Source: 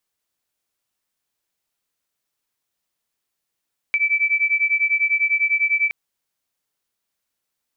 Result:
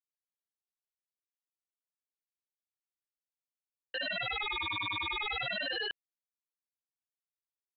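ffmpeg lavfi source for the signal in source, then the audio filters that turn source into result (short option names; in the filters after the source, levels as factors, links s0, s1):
-f lavfi -i "aevalsrc='0.106*(sin(2*PI*2310*t)+sin(2*PI*2320*t))':d=1.97:s=44100"
-af "agate=range=0.0224:threshold=0.141:ratio=3:detection=peak,aresample=8000,aeval=exprs='0.0447*(abs(mod(val(0)/0.0447+3,4)-2)-1)':c=same,aresample=44100,aeval=exprs='val(0)*sin(2*PI*480*n/s+480*0.8/0.31*sin(2*PI*0.31*n/s))':c=same"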